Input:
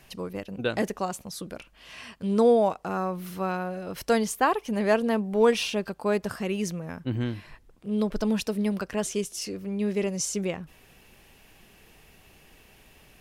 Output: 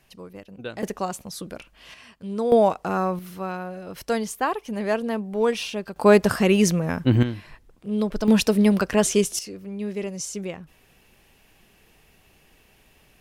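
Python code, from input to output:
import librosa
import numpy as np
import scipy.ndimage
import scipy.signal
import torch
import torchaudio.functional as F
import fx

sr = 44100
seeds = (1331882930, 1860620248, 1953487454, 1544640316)

y = fx.gain(x, sr, db=fx.steps((0.0, -6.5), (0.83, 2.0), (1.94, -5.0), (2.52, 5.0), (3.19, -1.5), (5.96, 11.0), (7.23, 2.0), (8.28, 9.0), (9.39, -2.5)))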